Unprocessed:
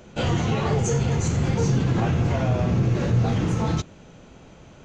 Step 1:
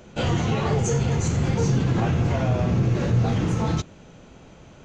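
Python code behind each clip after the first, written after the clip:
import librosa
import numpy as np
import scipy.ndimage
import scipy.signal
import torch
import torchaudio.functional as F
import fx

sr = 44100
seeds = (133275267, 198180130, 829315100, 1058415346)

y = x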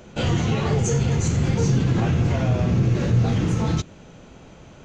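y = fx.dynamic_eq(x, sr, hz=850.0, q=0.79, threshold_db=-37.0, ratio=4.0, max_db=-4)
y = y * 10.0 ** (2.0 / 20.0)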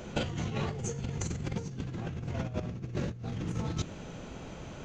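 y = fx.over_compress(x, sr, threshold_db=-26.0, ratio=-0.5)
y = y * 10.0 ** (-6.5 / 20.0)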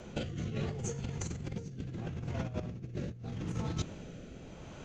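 y = fx.rotary(x, sr, hz=0.75)
y = y * 10.0 ** (-1.5 / 20.0)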